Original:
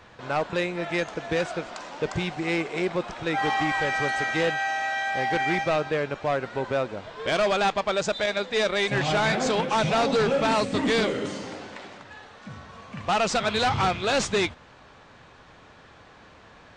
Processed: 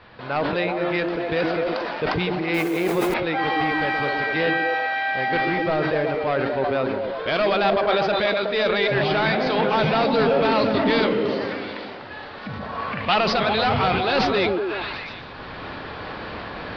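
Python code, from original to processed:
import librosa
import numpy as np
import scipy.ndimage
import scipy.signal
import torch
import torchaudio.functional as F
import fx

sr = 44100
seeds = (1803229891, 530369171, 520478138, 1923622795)

p1 = fx.delta_mod(x, sr, bps=64000, step_db=-41.5, at=(5.38, 6.19))
p2 = fx.recorder_agc(p1, sr, target_db=-26.0, rise_db_per_s=13.0, max_gain_db=30)
p3 = scipy.signal.sosfilt(scipy.signal.ellip(4, 1.0, 40, 4800.0, 'lowpass', fs=sr, output='sos'), p2)
p4 = fx.quant_dither(p3, sr, seeds[0], bits=8, dither='triangular', at=(2.54, 3.14))
p5 = fx.peak_eq(p4, sr, hz=fx.line((12.6, 490.0), (13.14, 3100.0)), db=9.0, octaves=1.6, at=(12.6, 13.14), fade=0.02)
p6 = p5 + fx.echo_stepped(p5, sr, ms=123, hz=280.0, octaves=0.7, feedback_pct=70, wet_db=0, dry=0)
p7 = fx.sustainer(p6, sr, db_per_s=23.0)
y = p7 * 10.0 ** (2.0 / 20.0)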